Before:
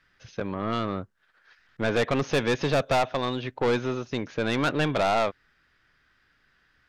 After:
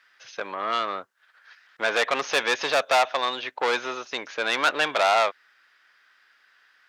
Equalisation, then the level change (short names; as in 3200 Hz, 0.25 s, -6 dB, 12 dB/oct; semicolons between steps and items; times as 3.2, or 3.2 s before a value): HPF 760 Hz 12 dB/oct; +6.5 dB